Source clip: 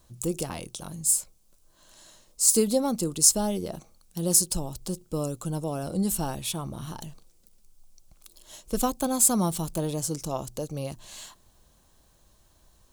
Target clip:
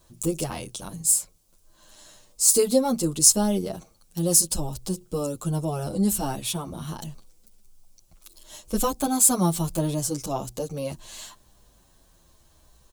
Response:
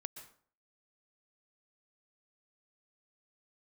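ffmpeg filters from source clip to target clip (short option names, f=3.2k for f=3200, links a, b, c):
-filter_complex "[0:a]asplit=2[a][b];[b]adelay=8.8,afreqshift=-0.74[c];[a][c]amix=inputs=2:normalize=1,volume=5.5dB"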